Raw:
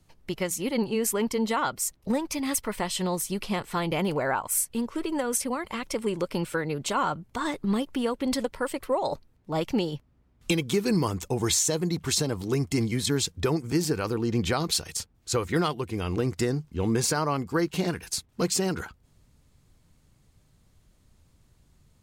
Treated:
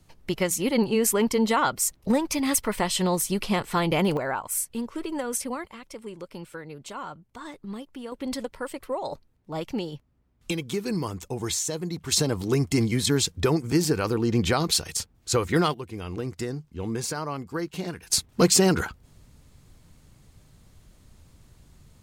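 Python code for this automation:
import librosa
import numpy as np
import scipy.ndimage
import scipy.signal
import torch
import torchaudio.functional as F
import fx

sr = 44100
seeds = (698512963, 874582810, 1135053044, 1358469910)

y = fx.gain(x, sr, db=fx.steps((0.0, 4.0), (4.17, -2.0), (5.66, -10.5), (8.12, -4.0), (12.12, 3.0), (15.74, -5.0), (18.1, 7.5)))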